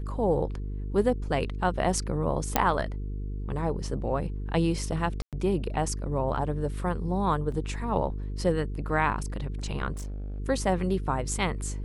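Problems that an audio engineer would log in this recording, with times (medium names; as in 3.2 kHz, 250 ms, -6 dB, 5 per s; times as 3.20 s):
buzz 50 Hz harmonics 9 -33 dBFS
2.56 s: pop -5 dBFS
5.22–5.33 s: dropout 107 ms
7.52 s: dropout 3 ms
9.92–10.40 s: clipped -32.5 dBFS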